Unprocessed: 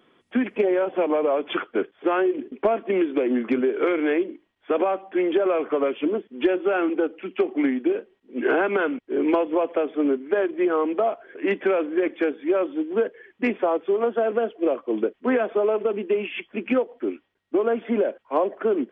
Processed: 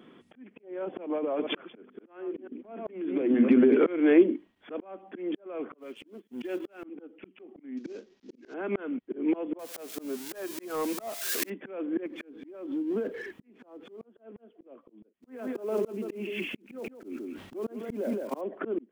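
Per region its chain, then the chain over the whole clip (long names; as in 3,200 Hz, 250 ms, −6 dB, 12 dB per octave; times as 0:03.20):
0:01.18–0:03.86: delay that plays each chunk backwards 144 ms, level −10 dB + mains-hum notches 50/100/150/200/250 Hz + downward compressor 12 to 1, threshold −22 dBFS
0:05.78–0:06.84: mu-law and A-law mismatch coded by A + high-shelf EQ 2,300 Hz +11.5 dB
0:07.77–0:08.54: variable-slope delta modulation 32 kbit/s + high-shelf EQ 3,200 Hz +9 dB
0:09.59–0:11.50: spike at every zero crossing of −18.5 dBFS + parametric band 300 Hz −9.5 dB 1.2 octaves + leveller curve on the samples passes 1
0:12.06–0:14.04: mu-law and A-law mismatch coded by mu + dynamic equaliser 290 Hz, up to +4 dB, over −34 dBFS, Q 2.9 + downward compressor 12 to 1, threshold −29 dBFS
0:15.18–0:18.43: one scale factor per block 5 bits + single-tap delay 167 ms −10 dB + level that may fall only so fast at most 70 dB per second
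whole clip: volume swells 420 ms; parametric band 220 Hz +10 dB 1.5 octaves; volume swells 799 ms; level +1.5 dB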